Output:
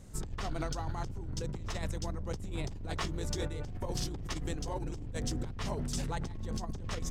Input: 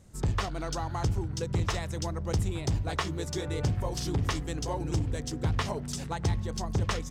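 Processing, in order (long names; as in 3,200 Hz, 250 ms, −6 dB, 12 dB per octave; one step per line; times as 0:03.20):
sub-octave generator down 2 octaves, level +1 dB
brickwall limiter −26 dBFS, peak gain reduction 11.5 dB
compressor whose output falls as the input rises −35 dBFS, ratio −0.5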